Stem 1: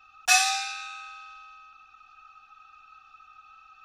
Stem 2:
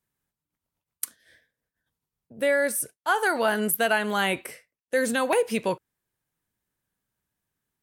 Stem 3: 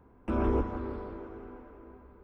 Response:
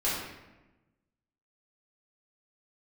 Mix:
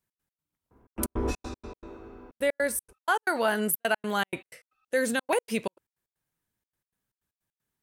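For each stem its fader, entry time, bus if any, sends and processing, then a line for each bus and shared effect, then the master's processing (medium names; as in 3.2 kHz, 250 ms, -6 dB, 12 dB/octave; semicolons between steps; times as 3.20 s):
-13.5 dB, 1.00 s, no send, auto duck -10 dB, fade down 1.85 s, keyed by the second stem
-2.0 dB, 0.00 s, no send, none
-1.5 dB, 0.70 s, no send, gate with hold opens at -50 dBFS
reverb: none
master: trance gate "x.x.xxxxx.x.xx." 156 bpm -60 dB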